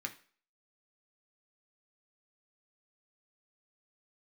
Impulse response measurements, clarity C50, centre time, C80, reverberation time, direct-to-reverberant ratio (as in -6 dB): 14.5 dB, 8 ms, 19.0 dB, not exponential, 2.5 dB